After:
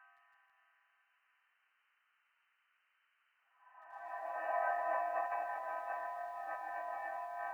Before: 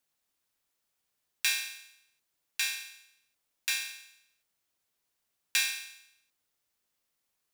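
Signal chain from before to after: spectral trails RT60 0.57 s; HPF 350 Hz 24 dB/oct; inverted band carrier 3400 Hz; Paulstretch 5.5×, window 1.00 s, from 4.41; high-pass sweep 1400 Hz -> 600 Hz, 3.31–4.38; negative-ratio compressor -40 dBFS, ratio -1; lo-fi delay 0.157 s, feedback 80%, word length 10-bit, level -14.5 dB; gain -1 dB

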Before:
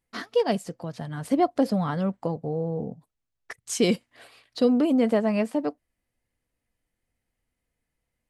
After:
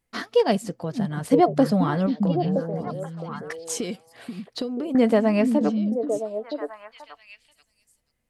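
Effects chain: 2.06–4.95 compressor 12:1, threshold -30 dBFS, peak gain reduction 15 dB; delay with a stepping band-pass 0.484 s, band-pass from 180 Hz, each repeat 1.4 oct, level -1 dB; gain +3.5 dB

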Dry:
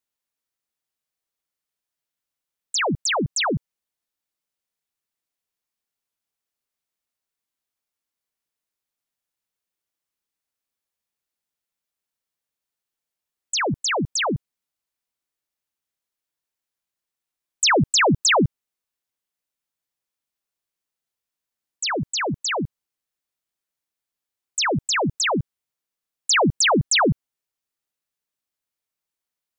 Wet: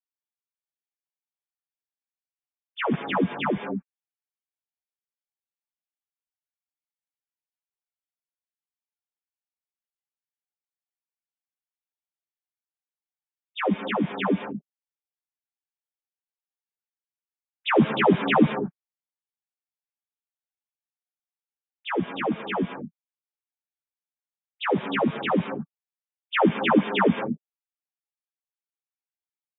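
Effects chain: sine-wave speech; non-linear reverb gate 0.24 s rising, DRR 9 dB; ensemble effect

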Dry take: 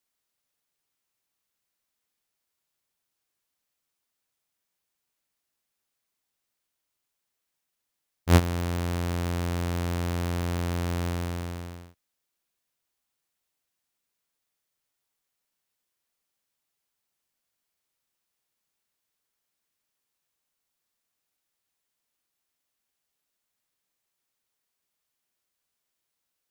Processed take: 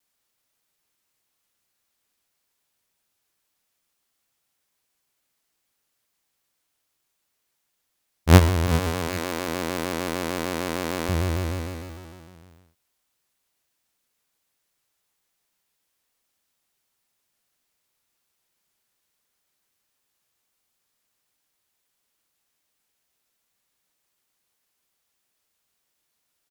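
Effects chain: 8.67–11.09 HPF 250 Hz 12 dB/oct; tapped delay 71/118/395/524/806 ms -14/-16.5/-12/-19.5/-18.5 dB; shaped vibrato square 6.6 Hz, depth 100 cents; gain +6 dB

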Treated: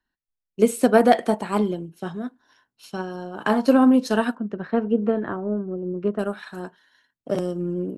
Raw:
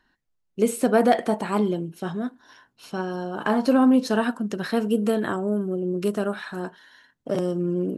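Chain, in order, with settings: 4.35–6.19 LPF 1800 Hz 12 dB/oct; transient shaper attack +3 dB, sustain -3 dB; three-band expander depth 40%

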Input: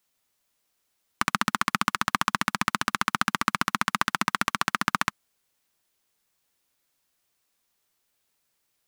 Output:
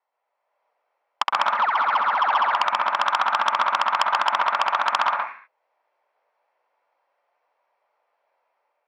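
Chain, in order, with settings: elliptic band-pass 540–2500 Hz, stop band 80 dB; AGC gain up to 7 dB; 1.49–2.55 dispersion lows, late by 0.145 s, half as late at 1100 Hz; reverb RT60 0.40 s, pre-delay 0.111 s, DRR 1.5 dB; core saturation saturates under 2900 Hz; gain -4 dB

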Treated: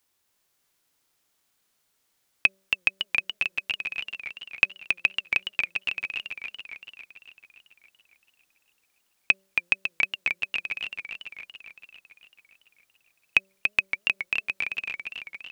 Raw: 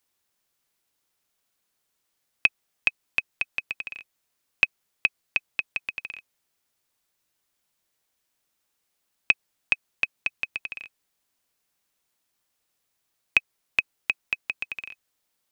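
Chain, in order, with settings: harmonic-percussive split percussive -5 dB; de-hum 192.5 Hz, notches 3; warbling echo 0.28 s, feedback 61%, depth 166 cents, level -5 dB; gain +5 dB

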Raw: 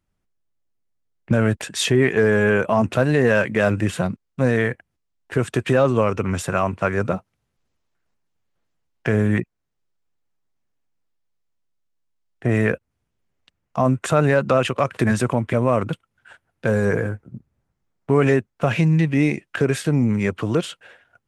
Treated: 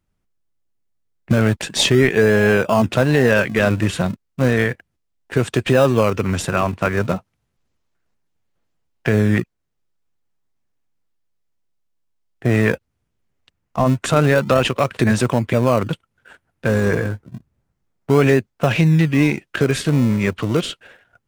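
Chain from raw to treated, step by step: dynamic EQ 4000 Hz, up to +6 dB, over -43 dBFS, Q 0.91; in parallel at -12 dB: decimation with a swept rate 38×, swing 100% 0.31 Hz; on the sum: gain +1 dB

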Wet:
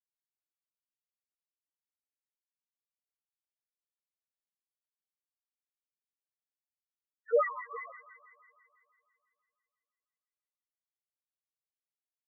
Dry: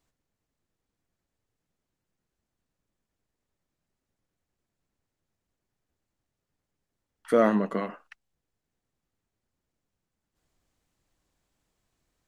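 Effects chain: gate -50 dBFS, range -36 dB; tilt shelf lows -6 dB, about 1100 Hz; LFO high-pass sine 5.4 Hz 510–1800 Hz; harmoniser -4 st -6 dB; loudest bins only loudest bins 1; on a send: thin delay 0.166 s, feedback 65%, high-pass 2400 Hz, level -5 dB; on the sum: gain +2.5 dB

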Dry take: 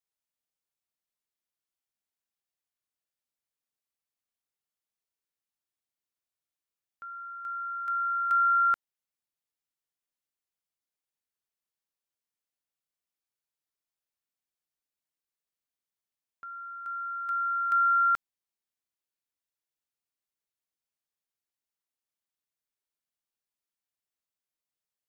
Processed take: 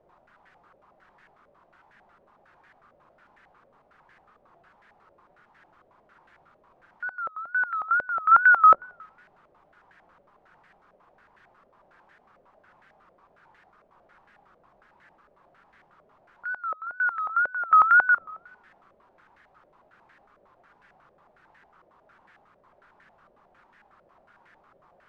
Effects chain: zero-crossing step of -45 dBFS; shoebox room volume 3900 m³, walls furnished, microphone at 1.1 m; wow and flutter 140 cents; stepped low-pass 11 Hz 580–1700 Hz; gain -1.5 dB

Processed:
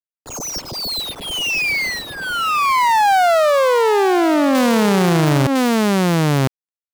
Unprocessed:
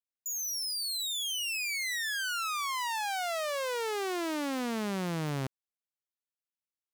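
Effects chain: median filter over 25 samples; 1.99–4.55 high shelf 2600 Hz -10.5 dB; echo 1.006 s -6.5 dB; maximiser +32 dB; gain -8 dB

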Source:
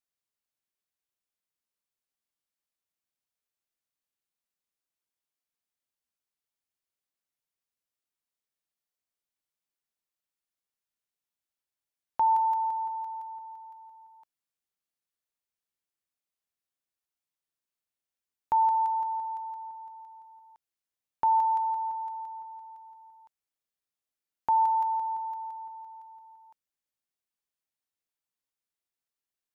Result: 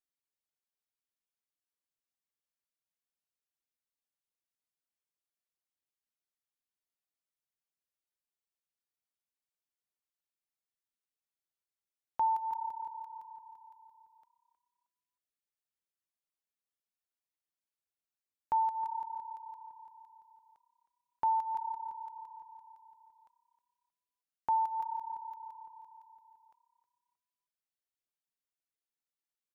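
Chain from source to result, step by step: frequency-shifting echo 0.314 s, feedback 34%, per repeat +33 Hz, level -14 dB; reverb removal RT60 0.77 s; gain -5 dB

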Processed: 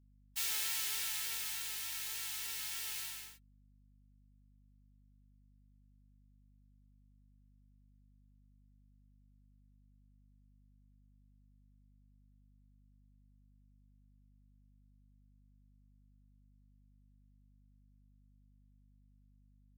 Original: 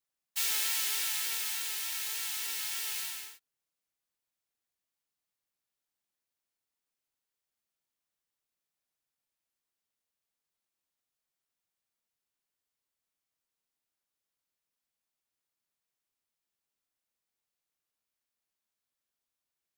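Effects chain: hum 50 Hz, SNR 18 dB; spectral gate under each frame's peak -30 dB strong; gain -5.5 dB

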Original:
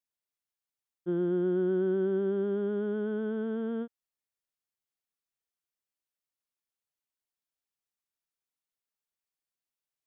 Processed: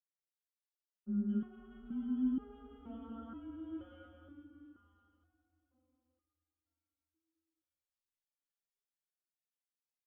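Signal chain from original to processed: three bands offset in time mids, highs, lows 0.21/0.65 s, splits 190/1300 Hz; frequency shift -140 Hz; low shelf 69 Hz -8.5 dB; digital reverb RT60 4.5 s, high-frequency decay 0.65×, pre-delay 65 ms, DRR 3.5 dB; stepped resonator 2.1 Hz 180–410 Hz; gain +3 dB

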